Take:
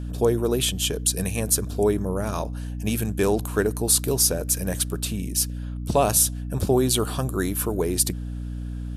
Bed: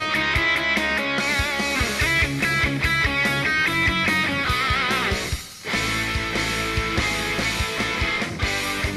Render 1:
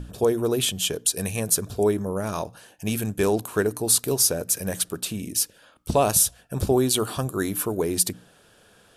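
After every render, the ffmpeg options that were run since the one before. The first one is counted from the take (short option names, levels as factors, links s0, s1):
-af "bandreject=f=60:t=h:w=6,bandreject=f=120:t=h:w=6,bandreject=f=180:t=h:w=6,bandreject=f=240:t=h:w=6,bandreject=f=300:t=h:w=6"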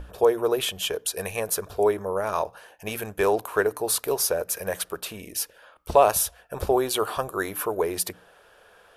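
-af "equalizer=f=125:t=o:w=1:g=-11,equalizer=f=250:t=o:w=1:g=-11,equalizer=f=500:t=o:w=1:g=5,equalizer=f=1000:t=o:w=1:g=5,equalizer=f=2000:t=o:w=1:g=3,equalizer=f=4000:t=o:w=1:g=-3,equalizer=f=8000:t=o:w=1:g=-8"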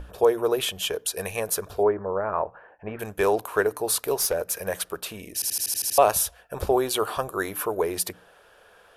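-filter_complex "[0:a]asplit=3[s0][s1][s2];[s0]afade=t=out:st=1.81:d=0.02[s3];[s1]lowpass=f=1800:w=0.5412,lowpass=f=1800:w=1.3066,afade=t=in:st=1.81:d=0.02,afade=t=out:st=2.99:d=0.02[s4];[s2]afade=t=in:st=2.99:d=0.02[s5];[s3][s4][s5]amix=inputs=3:normalize=0,asettb=1/sr,asplit=3[s6][s7][s8];[s6]atrim=end=4.154[s9];[s7]atrim=start=4.15:end=4.61,asetpts=PTS-STARTPTS,afade=t=in:d=0.004:c=qsin,afade=t=out:st=0.456:d=0.004:c=qsin,aeval=exprs='clip(val(0),-1,0.112)':c=same[s10];[s8]atrim=start=4.606[s11];[s9][s10]acrossfade=d=0.004:c1=hsin:c2=qsin[s12];[s12][s11]acrossfade=d=0.004:c1=qsin:c2=hsin,asplit=9[s13][s14][s15][s16][s17][s18][s19][s20][s21];[s13]atrim=end=5.422[s22];[s14]atrim=start=5.338:end=5.422[s23];[s15]atrim=start=5.338:end=5.422[s24];[s16]atrim=start=5.338:end=5.422[s25];[s17]atrim=start=5.338:end=5.422[s26];[s18]atrim=start=5.338:end=5.422[s27];[s19]atrim=start=5.338:end=5.422[s28];[s20]atrim=start=5.338:end=5.422[s29];[s21]atrim=start=5.978[s30];[s22][s23]acrossfade=d=0.004:c1=hsin:c2=hsin[s31];[s31][s24]acrossfade=d=0.004:c1=hsin:c2=hsin[s32];[s32][s25]acrossfade=d=0.004:c1=hsin:c2=hsin[s33];[s33][s26]acrossfade=d=0.004:c1=hsin:c2=hsin[s34];[s34][s27]acrossfade=d=0.004:c1=hsin:c2=hsin[s35];[s35][s28]acrossfade=d=0.004:c1=hsin:c2=hsin[s36];[s36][s29]acrossfade=d=0.004:c1=hsin:c2=hsin[s37];[s37][s30]acrossfade=d=0.004:c1=hsin:c2=hsin"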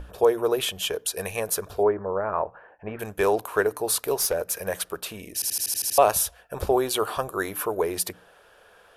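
-af anull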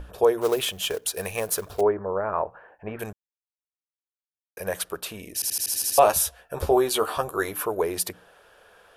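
-filter_complex "[0:a]asettb=1/sr,asplit=3[s0][s1][s2];[s0]atrim=end=0.414[s3];[s1]atrim=start=0.41:end=1.81,asetpts=PTS-STARTPTS,afade=t=in:d=0.004:c=qsin,afade=t=out:st=1.396:d=0.004:c=qsin,acrusher=bits=4:mode=log:mix=0:aa=0.000001[s4];[s2]atrim=start=1.806[s5];[s3][s4]acrossfade=d=0.004:c1=hsin:c2=qsin[s6];[s6][s5]acrossfade=d=0.004:c1=qsin:c2=hsin,asettb=1/sr,asplit=3[s7][s8][s9];[s7]atrim=end=5.724[s10];[s8]atrim=start=5.72:end=7.52,asetpts=PTS-STARTPTS,afade=t=in:d=0.004:c=qsin,afade=t=out:st=1.796:d=0.004:c=qsin,asplit=2[s11][s12];[s12]adelay=13,volume=0.501[s13];[s11][s13]amix=inputs=2:normalize=0,atrim=end_sample=79380[s14];[s9]atrim=start=7.516[s15];[s10][s14]acrossfade=d=0.004:c1=hsin:c2=qsin[s16];[s16][s15]acrossfade=d=0.004:c1=qsin:c2=hsin,asplit=3[s17][s18][s19];[s17]atrim=end=3.13,asetpts=PTS-STARTPTS,afade=t=out:st=3.126:d=0.004:c=hsin[s20];[s18]atrim=start=3.13:end=4.57,asetpts=PTS-STARTPTS,volume=0[s21];[s19]atrim=start=4.57,asetpts=PTS-STARTPTS,afade=t=in:d=0.004:c=hsin[s22];[s20][s21][s22]concat=n=3:v=0:a=1"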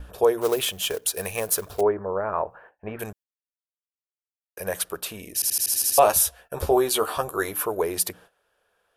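-af "agate=range=0.158:threshold=0.00355:ratio=16:detection=peak,highshelf=f=7500:g=5"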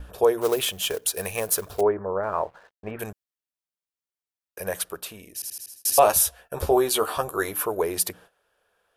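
-filter_complex "[0:a]asettb=1/sr,asplit=3[s0][s1][s2];[s0]atrim=end=2.234[s3];[s1]atrim=start=2.23:end=2.91,asetpts=PTS-STARTPTS,afade=t=in:d=0.004:c=qsin,afade=t=out:st=0.676:d=0.004:c=qsin,aeval=exprs='sgn(val(0))*max(abs(val(0))-0.00168,0)':c=same[s4];[s2]atrim=start=2.906[s5];[s3][s4]acrossfade=d=0.004:c1=hsin:c2=qsin[s6];[s6][s5]acrossfade=d=0.004:c1=qsin:c2=hsin,asplit=2[s7][s8];[s7]atrim=end=5.85,asetpts=PTS-STARTPTS,afade=t=out:st=4.61:d=1.24[s9];[s8]atrim=start=5.85,asetpts=PTS-STARTPTS,afade=t=in:d=0.004:c=hsin[s10];[s9][s10]concat=n=2:v=0:a=1"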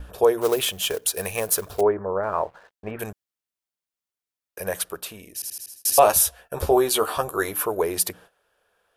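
-af "volume=1.19"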